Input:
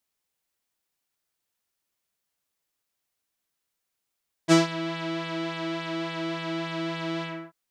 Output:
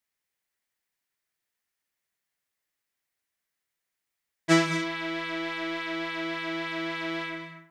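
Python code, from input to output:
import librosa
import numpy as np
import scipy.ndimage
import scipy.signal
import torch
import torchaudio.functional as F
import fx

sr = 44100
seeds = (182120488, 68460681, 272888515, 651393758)

p1 = fx.peak_eq(x, sr, hz=1900.0, db=8.5, octaves=0.59)
p2 = np.sign(p1) * np.maximum(np.abs(p1) - 10.0 ** (-37.0 / 20.0), 0.0)
p3 = p1 + F.gain(torch.from_numpy(p2), -10.0).numpy()
p4 = fx.rev_gated(p3, sr, seeds[0], gate_ms=250, shape='rising', drr_db=7.5)
y = F.gain(torch.from_numpy(p4), -4.5).numpy()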